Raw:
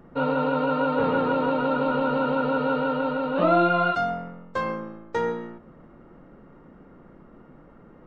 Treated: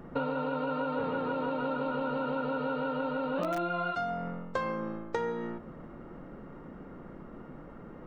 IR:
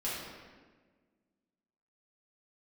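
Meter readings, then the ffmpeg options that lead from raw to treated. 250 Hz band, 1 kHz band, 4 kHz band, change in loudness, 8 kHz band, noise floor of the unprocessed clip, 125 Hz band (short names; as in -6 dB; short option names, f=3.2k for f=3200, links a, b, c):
-8.0 dB, -9.0 dB, -8.5 dB, -8.5 dB, n/a, -51 dBFS, -7.5 dB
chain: -filter_complex "[0:a]asplit=2[a][b];[b]aeval=exprs='(mod(3.35*val(0)+1,2)-1)/3.35':c=same,volume=-7dB[c];[a][c]amix=inputs=2:normalize=0,acompressor=threshold=-29dB:ratio=10"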